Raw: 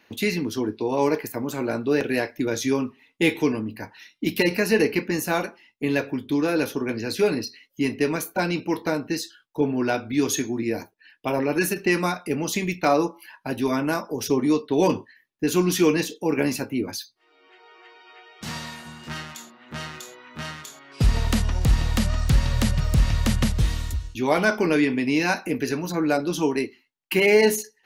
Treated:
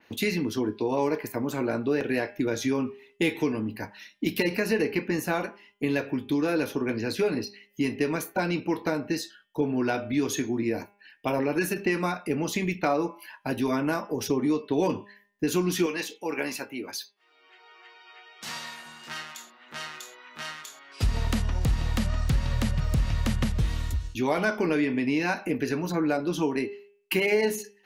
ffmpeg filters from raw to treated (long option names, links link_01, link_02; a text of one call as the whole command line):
ffmpeg -i in.wav -filter_complex "[0:a]asettb=1/sr,asplit=3[link_01][link_02][link_03];[link_01]atrim=end=15.864[link_04];[link_02]atrim=start=15.86:end=21.03,asetpts=PTS-STARTPTS,afade=type=in:duration=0.004:curve=qsin,afade=type=out:start_time=5.166:duration=0.004:curve=qsin,highpass=frequency=900:poles=1[link_05];[link_03]atrim=start=21.026[link_06];[link_04][link_05]acrossfade=duration=0.004:curve1=hsin:curve2=qsin[link_07];[link_07][link_06]acrossfade=duration=0.004:curve1=qsin:curve2=hsin,bandreject=frequency=202.6:width_type=h:width=4,bandreject=frequency=405.2:width_type=h:width=4,bandreject=frequency=607.8:width_type=h:width=4,bandreject=frequency=810.4:width_type=h:width=4,bandreject=frequency=1013:width_type=h:width=4,bandreject=frequency=1215.6:width_type=h:width=4,bandreject=frequency=1418.2:width_type=h:width=4,bandreject=frequency=1620.8:width_type=h:width=4,bandreject=frequency=1823.4:width_type=h:width=4,bandreject=frequency=2026:width_type=h:width=4,bandreject=frequency=2228.6:width_type=h:width=4,bandreject=frequency=2431.2:width_type=h:width=4,bandreject=frequency=2633.8:width_type=h:width=4,bandreject=frequency=2836.4:width_type=h:width=4,bandreject=frequency=3039:width_type=h:width=4,bandreject=frequency=3241.6:width_type=h:width=4,bandreject=frequency=3444.2:width_type=h:width=4,acompressor=threshold=-23dB:ratio=2.5,adynamicequalizer=threshold=0.00501:dfrequency=3600:dqfactor=0.7:tfrequency=3600:tqfactor=0.7:attack=5:release=100:ratio=0.375:range=3.5:mode=cutabove:tftype=highshelf" out.wav